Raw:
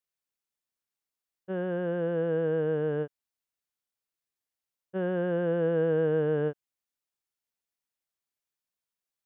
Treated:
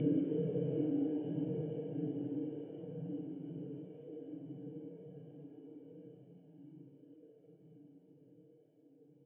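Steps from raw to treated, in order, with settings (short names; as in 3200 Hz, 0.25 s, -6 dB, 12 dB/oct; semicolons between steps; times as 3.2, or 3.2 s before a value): high shelf 2800 Hz -6.5 dB; Schroeder reverb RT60 2.9 s, combs from 30 ms, DRR 3 dB; Paulstretch 5.8×, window 0.05 s, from 6.62; vocal tract filter i; on a send: frequency-shifting echo 0.16 s, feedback 59%, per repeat +91 Hz, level -18.5 dB; on the sum: gain +11.5 dB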